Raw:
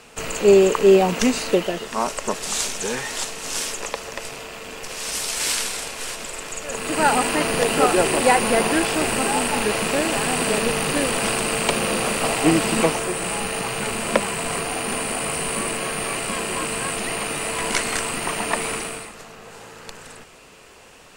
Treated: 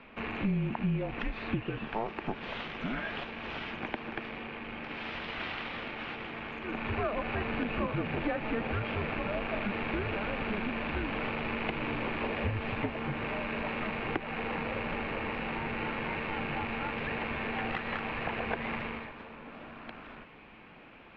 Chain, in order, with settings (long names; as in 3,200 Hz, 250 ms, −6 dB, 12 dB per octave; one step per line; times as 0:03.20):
stylus tracing distortion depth 0.11 ms
downward compressor, threshold −24 dBFS, peak gain reduction 14 dB
single-sideband voice off tune −220 Hz 220–3,300 Hz
level −4.5 dB